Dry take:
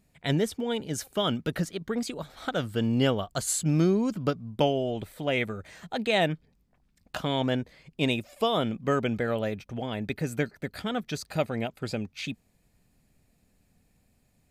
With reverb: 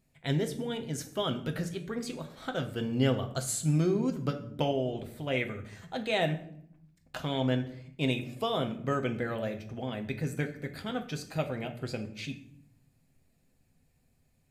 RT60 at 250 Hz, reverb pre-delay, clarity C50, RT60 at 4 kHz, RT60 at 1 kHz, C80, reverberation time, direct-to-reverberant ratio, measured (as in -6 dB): 1.1 s, 6 ms, 12.0 dB, 0.45 s, 0.60 s, 15.5 dB, 0.65 s, 4.5 dB